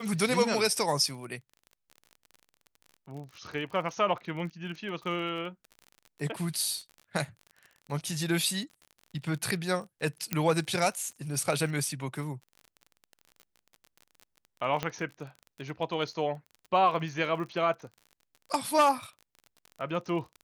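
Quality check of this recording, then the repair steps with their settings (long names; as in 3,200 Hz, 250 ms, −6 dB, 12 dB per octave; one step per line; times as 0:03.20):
surface crackle 32 per second −39 dBFS
0:10.33: click −11 dBFS
0:14.83: click −15 dBFS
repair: click removal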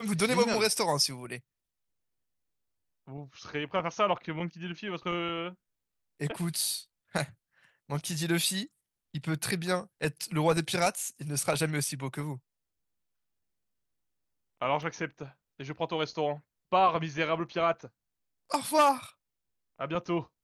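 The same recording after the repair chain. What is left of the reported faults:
0:14.83: click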